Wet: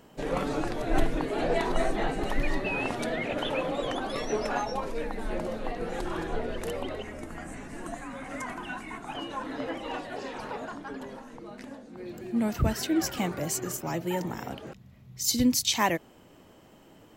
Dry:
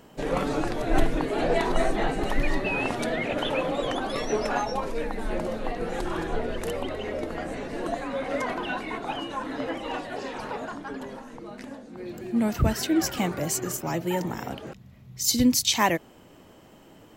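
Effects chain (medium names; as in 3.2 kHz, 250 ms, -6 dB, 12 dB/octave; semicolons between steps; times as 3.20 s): 7.02–9.15 s: graphic EQ 500/4000/8000 Hz -12/-10/+8 dB; trim -3 dB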